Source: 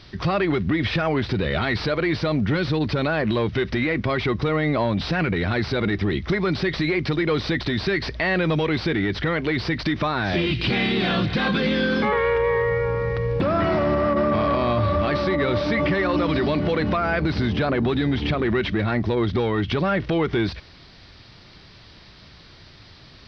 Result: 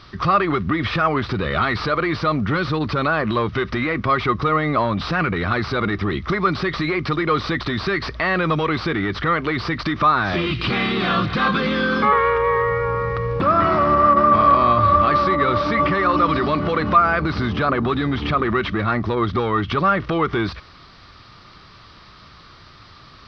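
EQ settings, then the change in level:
parametric band 1,200 Hz +14.5 dB 0.43 octaves
0.0 dB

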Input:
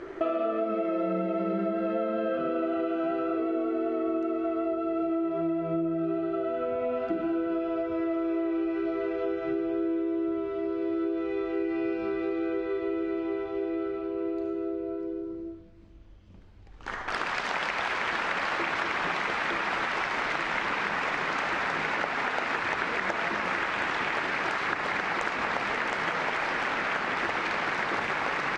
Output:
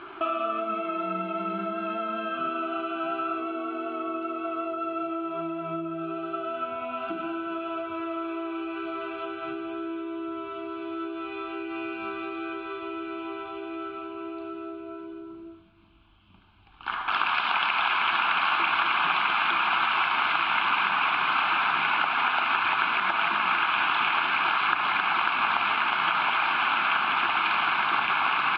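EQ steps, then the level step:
low-pass filter 2,900 Hz 24 dB per octave
spectral tilt +4 dB per octave
phaser with its sweep stopped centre 1,900 Hz, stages 6
+7.0 dB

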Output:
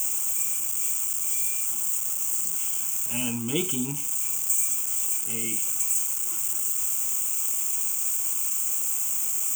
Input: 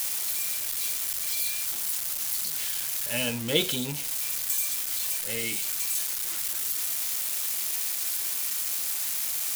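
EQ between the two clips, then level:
parametric band 360 Hz +10.5 dB 2.2 octaves
high shelf with overshoot 6,300 Hz +8.5 dB, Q 3
phaser with its sweep stopped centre 2,700 Hz, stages 8
−2.5 dB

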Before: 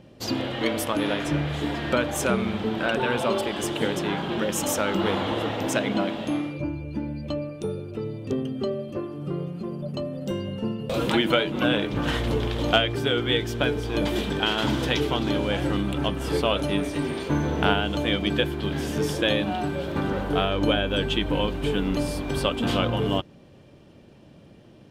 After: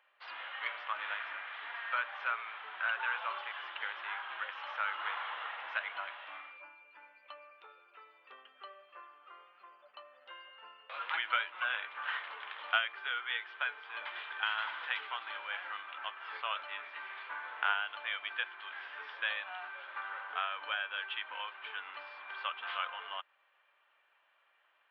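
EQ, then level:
Gaussian smoothing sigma 3.8 samples
high-pass filter 1,200 Hz 24 dB per octave
0.0 dB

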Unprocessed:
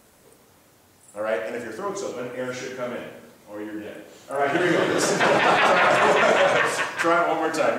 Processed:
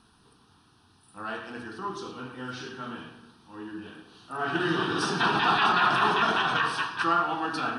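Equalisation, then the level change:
elliptic low-pass filter 9,900 Hz, stop band 40 dB
phaser with its sweep stopped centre 2,100 Hz, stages 6
0.0 dB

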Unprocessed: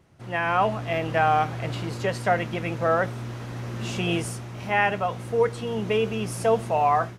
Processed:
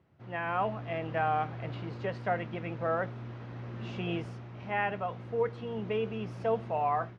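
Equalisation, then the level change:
high-pass filter 61 Hz
high-frequency loss of the air 250 metres
−7.5 dB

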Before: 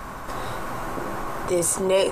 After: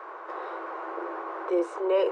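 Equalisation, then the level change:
Chebyshev high-pass with heavy ripple 330 Hz, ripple 3 dB
head-to-tape spacing loss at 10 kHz 40 dB
+1.0 dB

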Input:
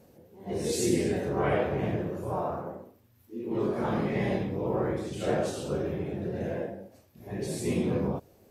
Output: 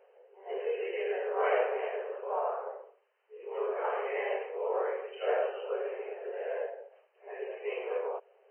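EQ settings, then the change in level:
linear-phase brick-wall band-pass 390–3,100 Hz
0.0 dB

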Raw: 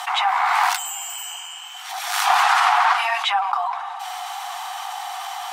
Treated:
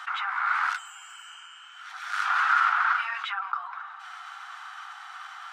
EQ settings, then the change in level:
four-pole ladder high-pass 1,300 Hz, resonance 75%
head-to-tape spacing loss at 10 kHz 23 dB
high-shelf EQ 4,800 Hz +10.5 dB
+1.0 dB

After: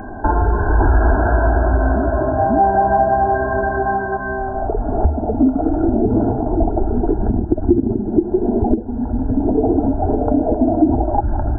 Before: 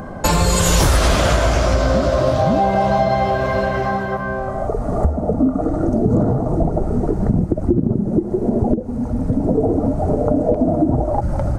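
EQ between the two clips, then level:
linear-phase brick-wall low-pass 1,700 Hz
phaser with its sweep stopped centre 800 Hz, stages 8
+4.0 dB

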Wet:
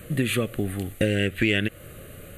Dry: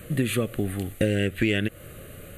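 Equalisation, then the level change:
dynamic equaliser 2,500 Hz, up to +4 dB, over −37 dBFS, Q 0.78
0.0 dB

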